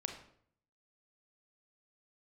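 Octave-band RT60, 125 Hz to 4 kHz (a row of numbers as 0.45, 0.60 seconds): 0.85, 0.70, 0.65, 0.55, 0.50, 0.45 seconds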